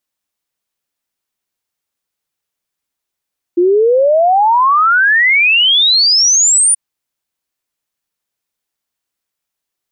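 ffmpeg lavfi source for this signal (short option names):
-f lavfi -i "aevalsrc='0.447*clip(min(t,3.18-t)/0.01,0,1)*sin(2*PI*340*3.18/log(9600/340)*(exp(log(9600/340)*t/3.18)-1))':d=3.18:s=44100"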